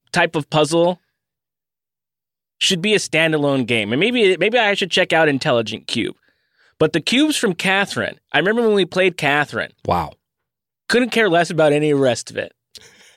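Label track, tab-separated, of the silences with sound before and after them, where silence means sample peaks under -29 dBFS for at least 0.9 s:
0.940000	2.610000	silence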